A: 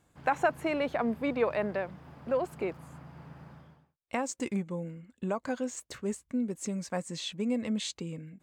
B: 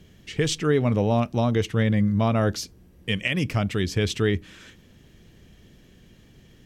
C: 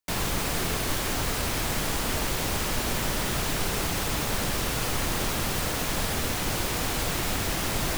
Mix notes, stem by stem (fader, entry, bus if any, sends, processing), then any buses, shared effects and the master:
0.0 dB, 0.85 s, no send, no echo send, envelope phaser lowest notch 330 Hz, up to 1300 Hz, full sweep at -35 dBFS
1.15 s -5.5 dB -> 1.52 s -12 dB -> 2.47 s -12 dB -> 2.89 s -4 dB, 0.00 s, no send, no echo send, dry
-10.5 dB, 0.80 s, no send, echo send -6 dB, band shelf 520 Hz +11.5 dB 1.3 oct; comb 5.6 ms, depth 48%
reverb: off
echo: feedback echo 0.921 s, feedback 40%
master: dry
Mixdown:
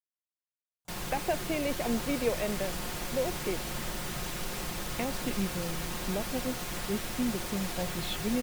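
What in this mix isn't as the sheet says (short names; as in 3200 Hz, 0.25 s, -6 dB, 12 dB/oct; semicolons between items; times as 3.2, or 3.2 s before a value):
stem B: muted; stem C: missing band shelf 520 Hz +11.5 dB 1.3 oct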